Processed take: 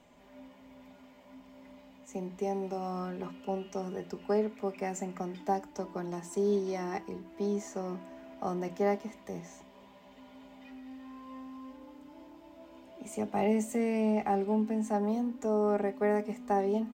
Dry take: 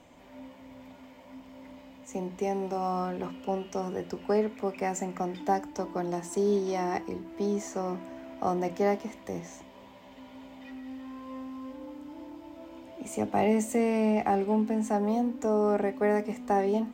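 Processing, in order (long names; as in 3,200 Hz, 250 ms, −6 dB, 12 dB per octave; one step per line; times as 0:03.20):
comb filter 4.9 ms, depth 42%
level −5.5 dB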